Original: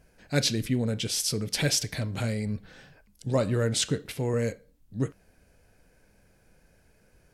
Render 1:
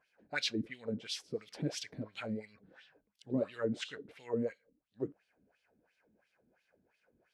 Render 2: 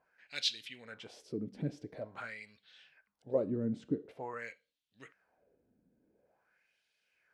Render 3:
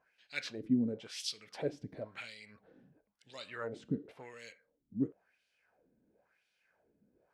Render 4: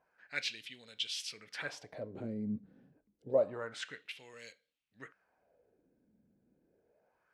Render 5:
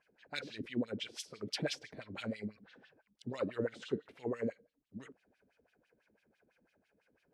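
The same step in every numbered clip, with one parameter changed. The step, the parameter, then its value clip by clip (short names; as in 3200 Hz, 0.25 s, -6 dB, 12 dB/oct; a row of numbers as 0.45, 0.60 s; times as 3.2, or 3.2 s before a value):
wah, rate: 2.9, 0.47, 0.96, 0.28, 6 Hz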